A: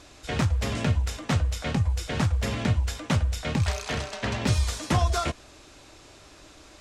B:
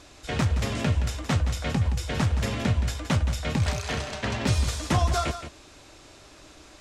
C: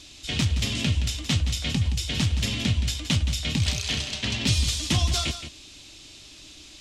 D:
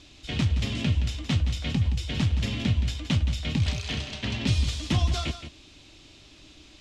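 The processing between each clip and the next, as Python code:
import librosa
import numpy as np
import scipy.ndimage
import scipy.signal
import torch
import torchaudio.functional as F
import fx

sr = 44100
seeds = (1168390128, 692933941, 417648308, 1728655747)

y1 = x + 10.0 ** (-10.5 / 20.0) * np.pad(x, (int(171 * sr / 1000.0), 0))[:len(x)]
y2 = fx.curve_eq(y1, sr, hz=(300.0, 470.0, 1500.0, 3100.0, 10000.0), db=(0, -9, -8, 10, 4))
y3 = fx.lowpass(y2, sr, hz=1900.0, slope=6)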